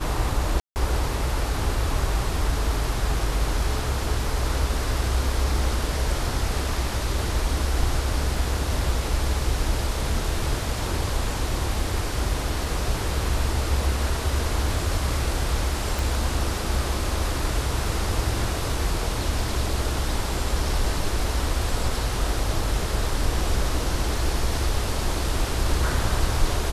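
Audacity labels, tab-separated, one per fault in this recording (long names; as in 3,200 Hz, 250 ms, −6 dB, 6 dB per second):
0.600000	0.760000	drop-out 159 ms
15.990000	15.990000	click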